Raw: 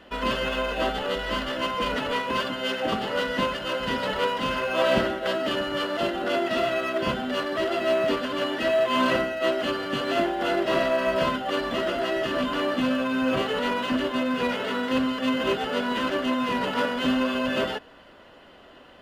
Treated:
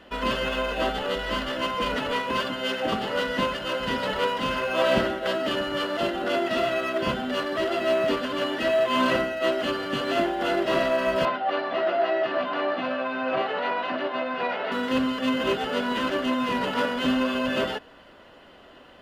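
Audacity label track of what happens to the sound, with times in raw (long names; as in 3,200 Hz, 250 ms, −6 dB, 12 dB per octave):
11.250000	14.720000	loudspeaker in its box 240–4,000 Hz, peaks and dips at 240 Hz −9 dB, 460 Hz −5 dB, 720 Hz +9 dB, 3,200 Hz −7 dB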